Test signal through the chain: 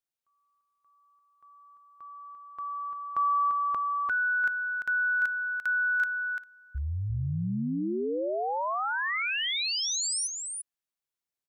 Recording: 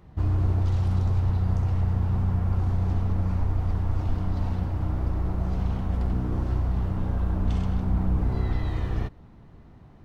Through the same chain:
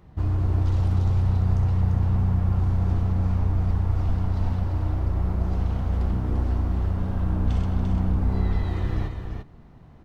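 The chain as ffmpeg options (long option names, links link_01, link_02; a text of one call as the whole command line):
ffmpeg -i in.wav -af "aecho=1:1:344:0.531" out.wav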